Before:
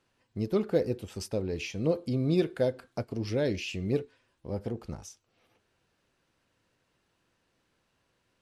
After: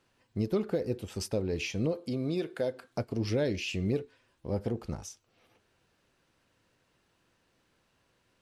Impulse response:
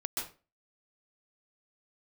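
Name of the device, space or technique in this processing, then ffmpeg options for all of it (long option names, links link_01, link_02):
stacked limiters: -filter_complex "[0:a]alimiter=limit=-19.5dB:level=0:latency=1:release=180,alimiter=limit=-23dB:level=0:latency=1:release=349,asettb=1/sr,asplit=3[link_01][link_02][link_03];[link_01]atrim=end=1.934[link_04];[link_02]atrim=start=1.93:end=2.91,asetpts=PTS-STARTPTS,afade=type=in:duration=0.004:curve=qsin,afade=type=out:start_time=0.976:duration=0.004:curve=qsin,highpass=frequency=260:poles=1[link_05];[link_03]atrim=start=2.906[link_06];[link_04][link_05]acrossfade=duration=0.004:curve1=hsin:curve2=qsin[link_07];[link_07][link_06]acrossfade=duration=0.004:curve1=qsin:curve2=hsin,volume=2.5dB"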